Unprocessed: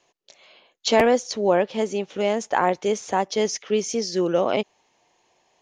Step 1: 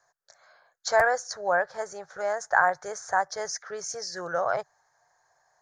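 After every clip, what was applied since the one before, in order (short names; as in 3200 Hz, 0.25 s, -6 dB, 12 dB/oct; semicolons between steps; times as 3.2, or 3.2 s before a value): EQ curve 150 Hz 0 dB, 230 Hz -27 dB, 690 Hz +4 dB, 1000 Hz +2 dB, 1600 Hz +14 dB, 2800 Hz -25 dB, 4400 Hz -1 dB, 8000 Hz +3 dB; gain -5 dB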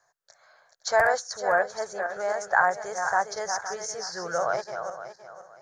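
regenerating reverse delay 0.258 s, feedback 51%, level -7 dB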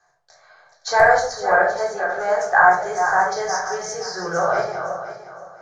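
air absorption 52 m; shoebox room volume 660 m³, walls furnished, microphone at 3.7 m; gain +2.5 dB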